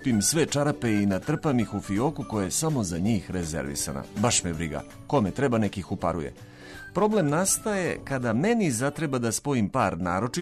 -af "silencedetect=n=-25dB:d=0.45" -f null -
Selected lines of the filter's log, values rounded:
silence_start: 6.27
silence_end: 6.96 | silence_duration: 0.69